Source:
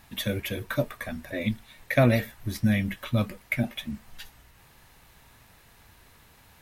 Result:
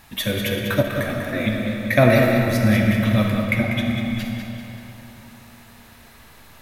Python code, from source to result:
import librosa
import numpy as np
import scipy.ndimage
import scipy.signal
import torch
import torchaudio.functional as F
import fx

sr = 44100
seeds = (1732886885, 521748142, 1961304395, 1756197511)

y = fx.high_shelf(x, sr, hz=11000.0, db=-9.5, at=(3.43, 3.86))
y = fx.echo_feedback(y, sr, ms=194, feedback_pct=48, wet_db=-8)
y = fx.rev_freeverb(y, sr, rt60_s=3.6, hf_ratio=0.55, predelay_ms=10, drr_db=1.0)
y = fx.transient(y, sr, attack_db=2, sustain_db=-6, at=(0.43, 0.95))
y = fx.low_shelf(y, sr, hz=320.0, db=-2.5)
y = y * 10.0 ** (6.0 / 20.0)